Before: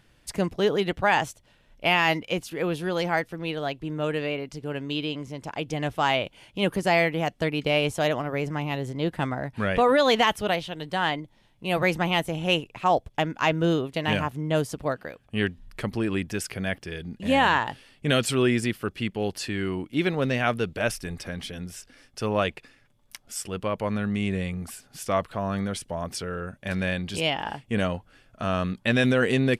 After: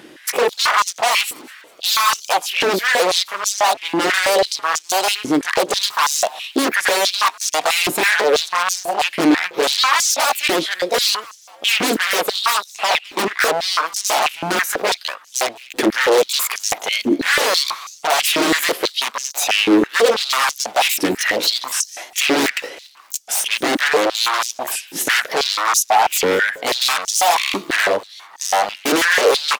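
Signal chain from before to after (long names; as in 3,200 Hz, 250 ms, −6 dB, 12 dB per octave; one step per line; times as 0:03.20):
pitch shifter swept by a sawtooth +6.5 semitones, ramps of 749 ms
in parallel at +1.5 dB: speech leveller 2 s
on the sum: brickwall limiter −9.5 dBFS, peak gain reduction 10.5 dB
wave folding −23 dBFS
on a send: echo with shifted repeats 201 ms, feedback 51%, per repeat +59 Hz, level −23 dB
on the sum: high-pass on a step sequencer 6.1 Hz 310–6,100 Hz
level +9 dB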